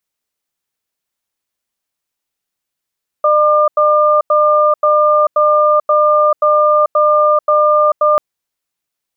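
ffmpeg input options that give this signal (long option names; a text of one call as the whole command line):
ffmpeg -f lavfi -i "aevalsrc='0.299*(sin(2*PI*603*t)+sin(2*PI*1200*t))*clip(min(mod(t,0.53),0.44-mod(t,0.53))/0.005,0,1)':duration=4.94:sample_rate=44100" out.wav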